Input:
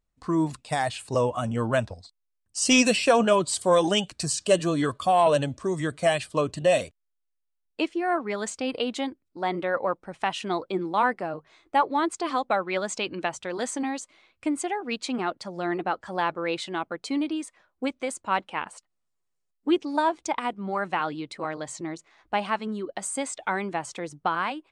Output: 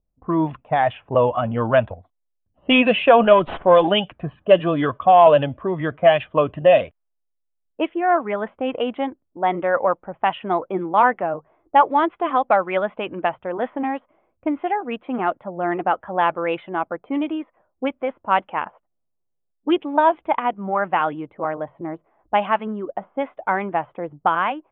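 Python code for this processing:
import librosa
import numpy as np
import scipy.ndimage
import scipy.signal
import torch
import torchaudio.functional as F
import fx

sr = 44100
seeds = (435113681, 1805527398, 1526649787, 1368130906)

y = fx.running_max(x, sr, window=3, at=(3.23, 3.88))
y = scipy.signal.sosfilt(scipy.signal.butter(16, 3400.0, 'lowpass', fs=sr, output='sos'), y)
y = fx.env_lowpass(y, sr, base_hz=470.0, full_db=-18.0)
y = fx.curve_eq(y, sr, hz=(400.0, 640.0, 1900.0), db=(0, 6, 1))
y = y * 10.0 ** (3.5 / 20.0)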